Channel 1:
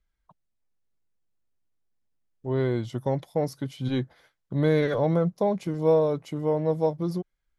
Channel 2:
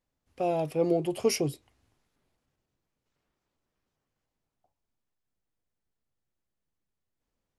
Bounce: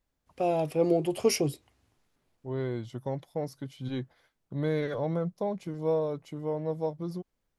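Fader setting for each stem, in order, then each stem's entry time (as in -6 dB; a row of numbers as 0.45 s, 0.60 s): -7.0 dB, +1.0 dB; 0.00 s, 0.00 s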